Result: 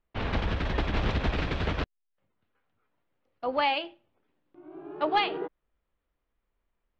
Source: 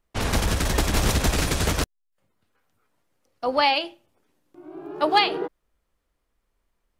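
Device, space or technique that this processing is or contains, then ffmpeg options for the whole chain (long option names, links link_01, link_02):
synthesiser wavefolder: -af "aeval=exprs='0.316*(abs(mod(val(0)/0.316+3,4)-2)-1)':channel_layout=same,lowpass=frequency=3500:width=0.5412,lowpass=frequency=3500:width=1.3066,volume=-5.5dB"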